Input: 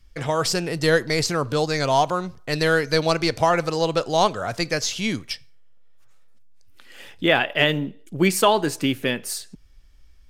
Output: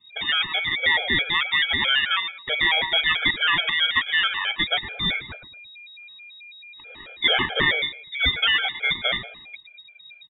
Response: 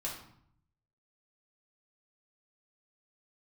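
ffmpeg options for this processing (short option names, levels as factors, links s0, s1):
-filter_complex "[0:a]lowpass=f=2600:t=q:w=0.5098,lowpass=f=2600:t=q:w=0.6013,lowpass=f=2600:t=q:w=0.9,lowpass=f=2600:t=q:w=2.563,afreqshift=-3100,aeval=exprs='val(0)*sin(2*PI*690*n/s)':c=same,asplit=2[s0][s1];[s1]adelay=112,lowpass=f=1200:p=1,volume=0.355,asplit=2[s2][s3];[s3]adelay=112,lowpass=f=1200:p=1,volume=0.29,asplit=2[s4][s5];[s5]adelay=112,lowpass=f=1200:p=1,volume=0.29[s6];[s2][s4][s6]amix=inputs=3:normalize=0[s7];[s0][s7]amix=inputs=2:normalize=0,alimiter=level_in=3.55:limit=0.891:release=50:level=0:latency=1,afftfilt=real='re*gt(sin(2*PI*4.6*pts/sr)*(1-2*mod(floor(b*sr/1024/430),2)),0)':imag='im*gt(sin(2*PI*4.6*pts/sr)*(1-2*mod(floor(b*sr/1024/430),2)),0)':win_size=1024:overlap=0.75,volume=0.631"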